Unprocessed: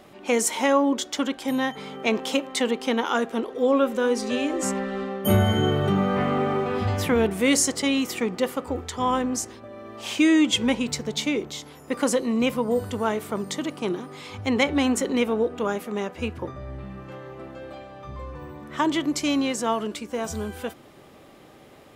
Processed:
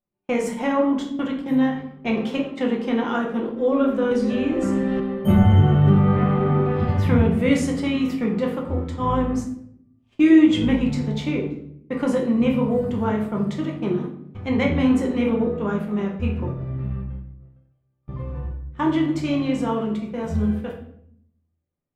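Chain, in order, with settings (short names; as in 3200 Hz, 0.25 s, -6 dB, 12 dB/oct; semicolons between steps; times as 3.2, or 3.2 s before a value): tone controls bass +12 dB, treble -13 dB; gate -29 dBFS, range -41 dB; flange 0.76 Hz, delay 1.2 ms, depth 9.1 ms, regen -82%; shoebox room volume 120 m³, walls mixed, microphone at 0.88 m; 4.11–5 three-band squash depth 100%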